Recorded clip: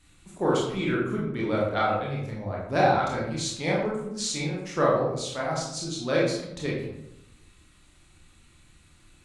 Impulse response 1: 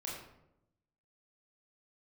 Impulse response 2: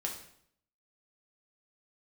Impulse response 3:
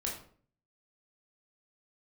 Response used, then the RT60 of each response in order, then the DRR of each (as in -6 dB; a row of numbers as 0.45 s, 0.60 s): 1; 0.85 s, 0.65 s, 0.50 s; -5.0 dB, -0.5 dB, -2.5 dB